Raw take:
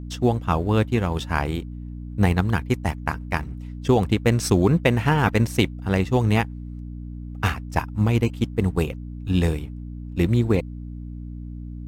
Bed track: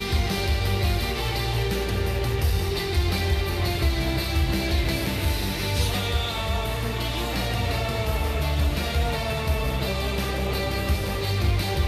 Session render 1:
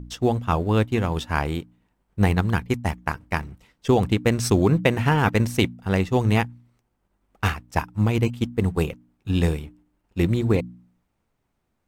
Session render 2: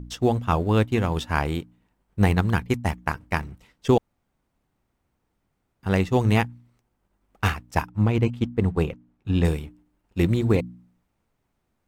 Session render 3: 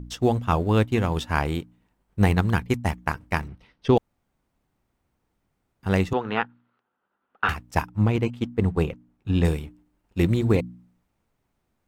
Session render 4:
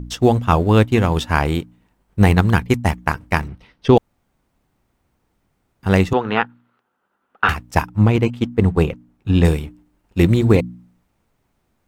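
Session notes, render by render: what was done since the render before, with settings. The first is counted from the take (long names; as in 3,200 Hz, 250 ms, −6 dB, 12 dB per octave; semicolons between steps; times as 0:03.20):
hum removal 60 Hz, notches 5
0:03.98–0:05.83: fill with room tone; 0:07.89–0:09.45: low-pass filter 2,600 Hz 6 dB per octave
0:03.48–0:03.97: Savitzky-Golay smoothing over 15 samples; 0:06.13–0:07.49: loudspeaker in its box 330–3,300 Hz, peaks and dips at 330 Hz −5 dB, 630 Hz −4 dB, 1,400 Hz +10 dB, 2,200 Hz −7 dB; 0:08.16–0:08.59: low-shelf EQ 130 Hz −9 dB
level +7 dB; brickwall limiter −1 dBFS, peak gain reduction 1.5 dB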